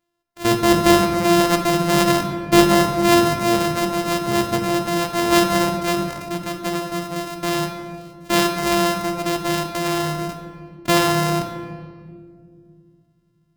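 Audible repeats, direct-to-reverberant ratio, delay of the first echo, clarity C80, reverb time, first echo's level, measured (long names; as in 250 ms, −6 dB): no echo audible, 3.5 dB, no echo audible, 7.0 dB, 2.2 s, no echo audible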